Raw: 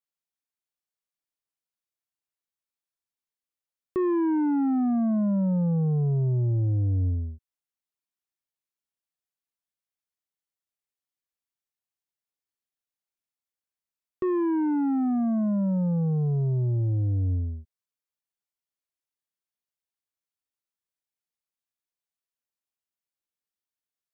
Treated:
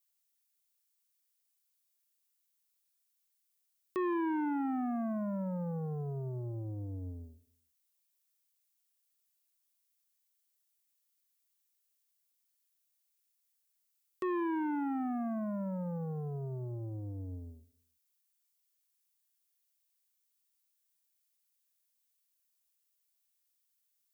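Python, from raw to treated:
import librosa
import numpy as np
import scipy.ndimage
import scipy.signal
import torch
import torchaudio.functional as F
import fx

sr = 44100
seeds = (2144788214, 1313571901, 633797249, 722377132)

y = fx.tilt_eq(x, sr, slope=4.5)
y = fx.echo_feedback(y, sr, ms=171, feedback_pct=32, wet_db=-22.5)
y = y * 10.0 ** (-2.0 / 20.0)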